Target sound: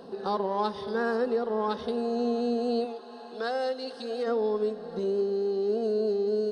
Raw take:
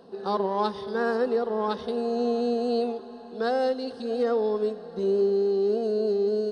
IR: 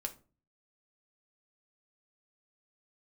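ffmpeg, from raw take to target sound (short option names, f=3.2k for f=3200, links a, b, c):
-filter_complex "[0:a]asplit=3[a][b][c];[a]afade=t=out:st=2.84:d=0.02[d];[b]highpass=f=780:p=1,afade=t=in:st=2.84:d=0.02,afade=t=out:st=4.26:d=0.02[e];[c]afade=t=in:st=4.26:d=0.02[f];[d][e][f]amix=inputs=3:normalize=0,acompressor=threshold=-43dB:ratio=1.5,asplit=2[g][h];[1:a]atrim=start_sample=2205[i];[h][i]afir=irnorm=-1:irlink=0,volume=-6.5dB[j];[g][j]amix=inputs=2:normalize=0,volume=2.5dB"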